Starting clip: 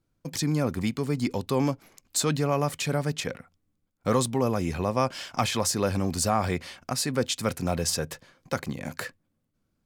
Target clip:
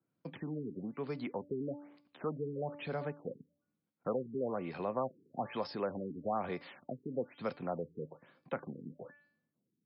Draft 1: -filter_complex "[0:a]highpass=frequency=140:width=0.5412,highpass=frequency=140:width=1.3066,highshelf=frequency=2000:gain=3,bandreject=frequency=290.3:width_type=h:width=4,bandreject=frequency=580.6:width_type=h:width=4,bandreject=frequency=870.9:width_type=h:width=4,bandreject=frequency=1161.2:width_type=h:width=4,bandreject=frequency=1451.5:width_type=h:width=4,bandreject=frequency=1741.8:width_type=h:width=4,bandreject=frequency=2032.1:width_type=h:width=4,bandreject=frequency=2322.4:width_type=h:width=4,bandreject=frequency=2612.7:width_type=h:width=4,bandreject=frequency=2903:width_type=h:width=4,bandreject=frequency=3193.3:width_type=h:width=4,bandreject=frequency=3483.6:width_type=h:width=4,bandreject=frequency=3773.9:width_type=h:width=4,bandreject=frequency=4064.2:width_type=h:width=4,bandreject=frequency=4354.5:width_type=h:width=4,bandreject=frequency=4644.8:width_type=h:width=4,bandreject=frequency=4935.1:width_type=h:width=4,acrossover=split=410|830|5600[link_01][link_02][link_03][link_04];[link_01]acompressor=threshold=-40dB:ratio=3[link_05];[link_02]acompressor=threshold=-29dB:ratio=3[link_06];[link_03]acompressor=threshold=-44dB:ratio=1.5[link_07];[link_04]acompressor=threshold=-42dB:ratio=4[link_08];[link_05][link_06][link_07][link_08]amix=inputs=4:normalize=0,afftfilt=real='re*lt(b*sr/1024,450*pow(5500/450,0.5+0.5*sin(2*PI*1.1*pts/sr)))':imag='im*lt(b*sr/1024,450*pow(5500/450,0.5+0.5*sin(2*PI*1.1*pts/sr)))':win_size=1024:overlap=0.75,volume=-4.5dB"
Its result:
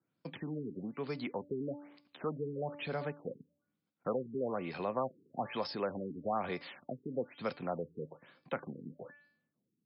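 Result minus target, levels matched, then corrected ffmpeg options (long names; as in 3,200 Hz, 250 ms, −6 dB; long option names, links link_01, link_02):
4,000 Hz band +4.5 dB
-filter_complex "[0:a]highpass=frequency=140:width=0.5412,highpass=frequency=140:width=1.3066,highshelf=frequency=2000:gain=-6.5,bandreject=frequency=290.3:width_type=h:width=4,bandreject=frequency=580.6:width_type=h:width=4,bandreject=frequency=870.9:width_type=h:width=4,bandreject=frequency=1161.2:width_type=h:width=4,bandreject=frequency=1451.5:width_type=h:width=4,bandreject=frequency=1741.8:width_type=h:width=4,bandreject=frequency=2032.1:width_type=h:width=4,bandreject=frequency=2322.4:width_type=h:width=4,bandreject=frequency=2612.7:width_type=h:width=4,bandreject=frequency=2903:width_type=h:width=4,bandreject=frequency=3193.3:width_type=h:width=4,bandreject=frequency=3483.6:width_type=h:width=4,bandreject=frequency=3773.9:width_type=h:width=4,bandreject=frequency=4064.2:width_type=h:width=4,bandreject=frequency=4354.5:width_type=h:width=4,bandreject=frequency=4644.8:width_type=h:width=4,bandreject=frequency=4935.1:width_type=h:width=4,acrossover=split=410|830|5600[link_01][link_02][link_03][link_04];[link_01]acompressor=threshold=-40dB:ratio=3[link_05];[link_02]acompressor=threshold=-29dB:ratio=3[link_06];[link_03]acompressor=threshold=-44dB:ratio=1.5[link_07];[link_04]acompressor=threshold=-42dB:ratio=4[link_08];[link_05][link_06][link_07][link_08]amix=inputs=4:normalize=0,afftfilt=real='re*lt(b*sr/1024,450*pow(5500/450,0.5+0.5*sin(2*PI*1.1*pts/sr)))':imag='im*lt(b*sr/1024,450*pow(5500/450,0.5+0.5*sin(2*PI*1.1*pts/sr)))':win_size=1024:overlap=0.75,volume=-4.5dB"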